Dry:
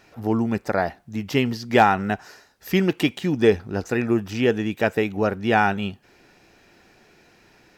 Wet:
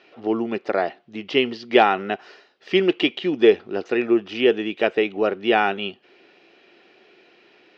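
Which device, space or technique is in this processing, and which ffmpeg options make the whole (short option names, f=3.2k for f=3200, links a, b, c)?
phone earpiece: -af "highpass=340,equalizer=f=370:t=q:w=4:g=6,equalizer=f=910:t=q:w=4:g=-6,equalizer=f=1.6k:t=q:w=4:g=-5,equalizer=f=3k:t=q:w=4:g=6,lowpass=f=4.2k:w=0.5412,lowpass=f=4.2k:w=1.3066,volume=2dB"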